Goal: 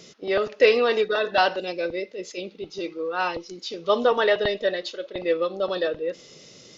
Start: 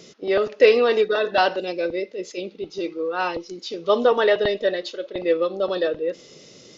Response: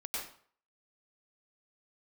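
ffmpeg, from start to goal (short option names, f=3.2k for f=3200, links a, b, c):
-af "equalizer=f=350:w=0.86:g=-4"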